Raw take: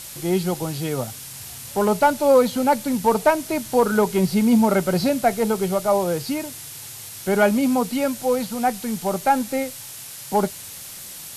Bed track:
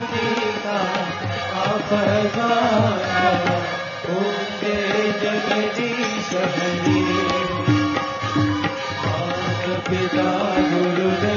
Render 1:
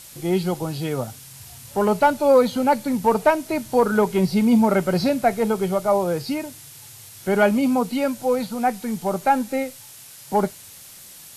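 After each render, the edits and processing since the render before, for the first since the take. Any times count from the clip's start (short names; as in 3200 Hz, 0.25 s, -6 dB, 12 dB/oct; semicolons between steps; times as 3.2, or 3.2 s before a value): noise print and reduce 6 dB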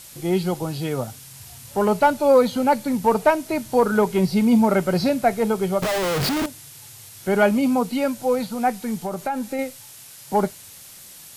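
5.82–6.46 Schmitt trigger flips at -37.5 dBFS; 8.95–9.59 compressor 4:1, threshold -22 dBFS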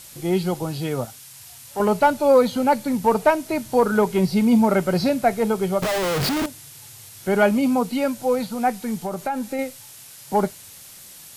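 1.05–1.8 low shelf 480 Hz -11 dB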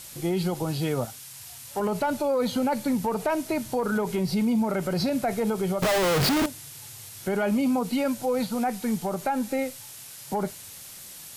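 limiter -18 dBFS, peak gain reduction 12 dB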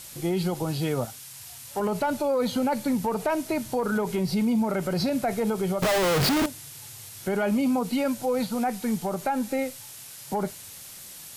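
nothing audible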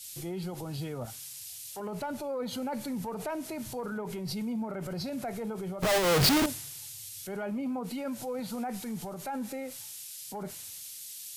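limiter -28 dBFS, peak gain reduction 10 dB; three-band expander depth 100%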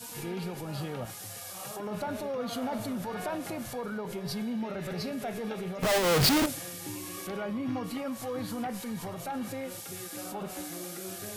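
add bed track -23 dB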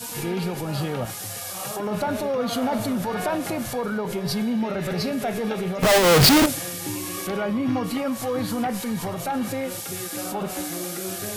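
gain +9 dB; limiter -2 dBFS, peak gain reduction 1 dB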